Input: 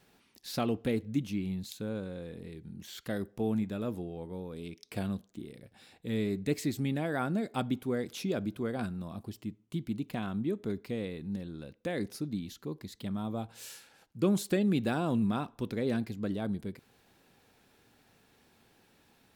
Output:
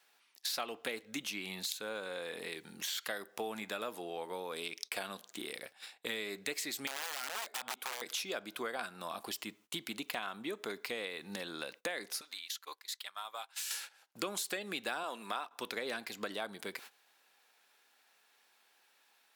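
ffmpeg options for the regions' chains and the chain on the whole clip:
ffmpeg -i in.wav -filter_complex "[0:a]asettb=1/sr,asplit=3[link_01][link_02][link_03];[link_01]atrim=end=6.874[link_04];[link_02]atrim=start=6.87:end=8.02,asetpts=PTS-STARTPTS,afade=type=in:duration=0.004:curve=qsin,afade=type=out:start_time=1.146:duration=0.004:curve=qsin,highpass=frequency=180:poles=1,acompressor=threshold=-37dB:ratio=5:attack=3.2:release=140:knee=1:detection=peak,aeval=exprs='(mod(66.8*val(0)+1,2)-1)/66.8':channel_layout=same[link_05];[link_03]atrim=start=8.016[link_06];[link_04][link_05]acrossfade=duration=0.004:curve1=hsin:curve2=qsin[link_07];[link_07][link_06]acrossfade=duration=0.004:curve1=qsin:curve2=hsin,asettb=1/sr,asplit=3[link_08][link_09][link_10];[link_08]atrim=end=12.214[link_11];[link_09]atrim=start=12.21:end=13.71,asetpts=PTS-STARTPTS,afade=type=in:duration=0.004:curve=qsin,afade=type=out:start_time=1.496:duration=0.004:curve=qsin,highpass=1100,acompressor=threshold=-50dB:ratio=8:attack=3.2:release=140:knee=1:detection=peak[link_12];[link_10]atrim=start=13.706[link_13];[link_11][link_12]acrossfade=duration=0.004:curve1=hsin:curve2=qsin[link_14];[link_14][link_13]acrossfade=duration=0.004:curve1=qsin:curve2=hsin,asettb=1/sr,asplit=3[link_15][link_16][link_17];[link_15]atrim=end=15.034[link_18];[link_16]atrim=start=15.03:end=15.51,asetpts=PTS-STARTPTS,afade=type=in:duration=0.004:curve=qsin,afade=type=out:start_time=0.476:duration=0.004:curve=qsin,agate=range=-33dB:threshold=-41dB:ratio=3:release=100:detection=peak,highpass=310[link_19];[link_17]atrim=start=15.506[link_20];[link_18][link_19]acrossfade=duration=0.004:curve1=hsin:curve2=qsin[link_21];[link_21][link_20]acrossfade=duration=0.004:curve1=qsin:curve2=hsin,agate=range=-19dB:threshold=-55dB:ratio=16:detection=peak,highpass=910,acompressor=threshold=-55dB:ratio=5,volume=18dB" out.wav

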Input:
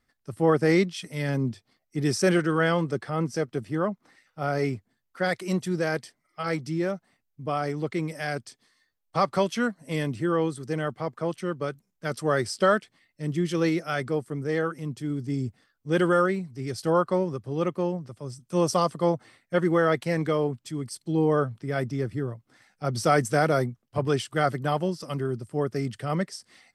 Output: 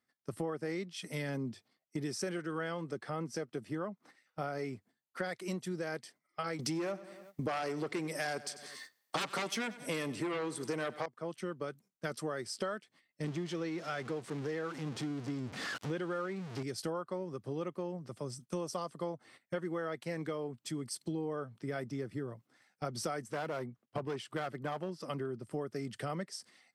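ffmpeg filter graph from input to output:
ffmpeg -i in.wav -filter_complex "[0:a]asettb=1/sr,asplit=3[link_01][link_02][link_03];[link_01]atrim=end=6.594[link_04];[link_02]atrim=start=6.59:end=11.06,asetpts=PTS-STARTPTS,afade=type=in:duration=0.004:curve=qsin,afade=type=out:start_time=4.466:duration=0.004:curve=qsin,bass=frequency=250:gain=-7,treble=frequency=4000:gain=2,aeval=exprs='0.299*sin(PI/2*4.47*val(0)/0.299)':channel_layout=same,aecho=1:1:94|188|282|376:0.112|0.0516|0.0237|0.0109,atrim=end_sample=197127[link_05];[link_03]atrim=start=11.056[link_06];[link_04][link_05]acrossfade=duration=0.004:curve1=hsin:curve2=qsin[link_07];[link_07][link_06]acrossfade=duration=0.004:curve1=qsin:curve2=hsin,asettb=1/sr,asplit=3[link_08][link_09][link_10];[link_08]atrim=end=13.244[link_11];[link_09]atrim=start=13.24:end=16.63,asetpts=PTS-STARTPTS,afade=type=in:duration=0.004:curve=qsin,afade=type=out:start_time=3.386:duration=0.004:curve=qsin,aeval=exprs='val(0)+0.5*0.0237*sgn(val(0))':channel_layout=same,lowpass=6300[link_12];[link_10]atrim=start=16.626[link_13];[link_11][link_12]acrossfade=duration=0.004:curve1=hsin:curve2=qsin[link_14];[link_14][link_13]acrossfade=duration=0.004:curve1=qsin:curve2=hsin,asettb=1/sr,asplit=3[link_15][link_16][link_17];[link_15]atrim=end=23.244[link_18];[link_16]atrim=start=23.24:end=25.51,asetpts=PTS-STARTPTS,afade=type=in:duration=0.004:curve=qsin,afade=type=out:start_time=2.266:duration=0.004:curve=qsin,bass=frequency=250:gain=-1,treble=frequency=4000:gain=-7,volume=20dB,asoftclip=hard,volume=-20dB[link_19];[link_17]atrim=start=25.506[link_20];[link_18][link_19]acrossfade=duration=0.004:curve1=hsin:curve2=qsin[link_21];[link_21][link_20]acrossfade=duration=0.004:curve1=qsin:curve2=hsin,highpass=160,agate=range=-11dB:threshold=-51dB:ratio=16:detection=peak,acompressor=threshold=-37dB:ratio=8,volume=2dB" out.wav

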